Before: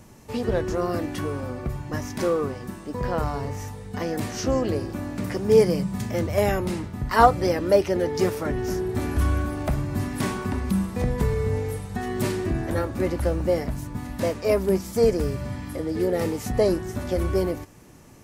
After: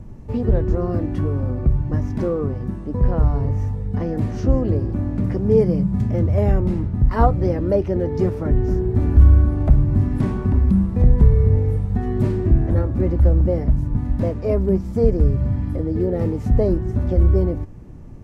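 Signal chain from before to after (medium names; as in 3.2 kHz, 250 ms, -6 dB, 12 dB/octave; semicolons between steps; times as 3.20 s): in parallel at -3 dB: compression, threshold -29 dBFS, peak gain reduction 18 dB; on the sum: tilt EQ -4.5 dB/octave; trim -6.5 dB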